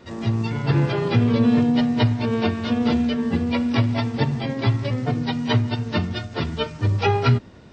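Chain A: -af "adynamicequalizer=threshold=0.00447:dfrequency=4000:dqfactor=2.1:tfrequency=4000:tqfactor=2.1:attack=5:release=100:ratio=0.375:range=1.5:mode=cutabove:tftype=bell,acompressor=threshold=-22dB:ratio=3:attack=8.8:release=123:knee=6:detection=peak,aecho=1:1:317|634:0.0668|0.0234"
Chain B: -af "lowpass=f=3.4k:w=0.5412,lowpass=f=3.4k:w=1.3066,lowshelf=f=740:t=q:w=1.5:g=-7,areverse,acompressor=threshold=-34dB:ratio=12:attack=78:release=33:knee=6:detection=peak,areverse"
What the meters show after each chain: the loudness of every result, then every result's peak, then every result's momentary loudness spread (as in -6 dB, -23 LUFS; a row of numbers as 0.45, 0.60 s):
-25.5, -32.0 LUFS; -11.5, -16.0 dBFS; 5, 3 LU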